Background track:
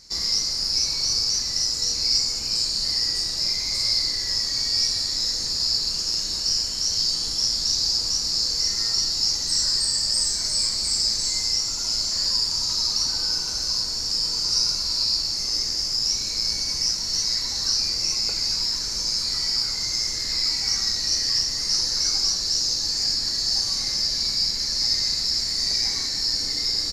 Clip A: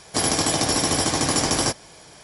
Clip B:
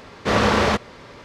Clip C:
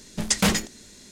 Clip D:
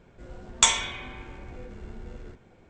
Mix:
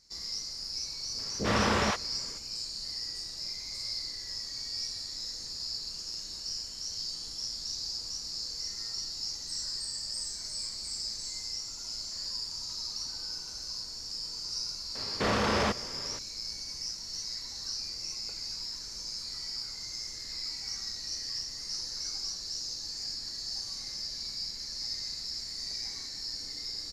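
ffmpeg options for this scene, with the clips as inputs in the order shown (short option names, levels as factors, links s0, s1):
-filter_complex "[2:a]asplit=2[s0][s1];[0:a]volume=0.2[s2];[s0]acrossover=split=550[s3][s4];[s4]adelay=50[s5];[s3][s5]amix=inputs=2:normalize=0[s6];[s1]alimiter=limit=0.141:level=0:latency=1:release=19[s7];[s6]atrim=end=1.24,asetpts=PTS-STARTPTS,volume=0.398,afade=t=in:d=0.004:c=hsin,afade=t=out:st=1.236:d=0.004:c=hsin,adelay=1140[s8];[s7]atrim=end=1.24,asetpts=PTS-STARTPTS,volume=0.75,afade=t=in:d=0.004:c=hsin,afade=t=out:st=1.236:d=0.004:c=hsin,adelay=14950[s9];[s2][s8][s9]amix=inputs=3:normalize=0"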